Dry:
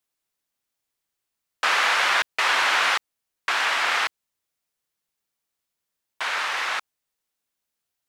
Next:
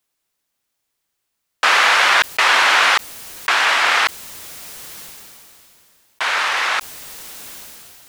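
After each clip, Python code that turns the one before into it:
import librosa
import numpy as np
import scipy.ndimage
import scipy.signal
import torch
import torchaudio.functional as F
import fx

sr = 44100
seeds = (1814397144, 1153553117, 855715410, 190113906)

y = fx.sustainer(x, sr, db_per_s=21.0)
y = y * 10.0 ** (7.0 / 20.0)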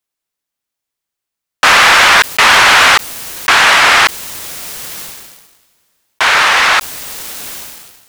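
y = fx.leveller(x, sr, passes=3)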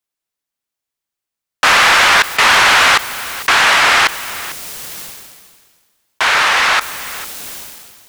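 y = x + 10.0 ** (-16.5 / 20.0) * np.pad(x, (int(448 * sr / 1000.0), 0))[:len(x)]
y = y * 10.0 ** (-3.0 / 20.0)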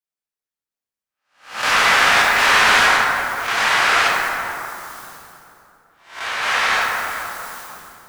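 y = fx.spec_swells(x, sr, rise_s=0.43)
y = fx.tremolo_random(y, sr, seeds[0], hz=1.4, depth_pct=55)
y = fx.rev_plate(y, sr, seeds[1], rt60_s=2.9, hf_ratio=0.35, predelay_ms=0, drr_db=-5.5)
y = y * 10.0 ** (-11.0 / 20.0)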